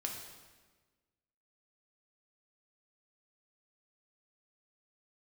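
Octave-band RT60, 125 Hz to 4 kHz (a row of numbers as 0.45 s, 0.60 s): 1.6 s, 1.6 s, 1.4 s, 1.3 s, 1.3 s, 1.1 s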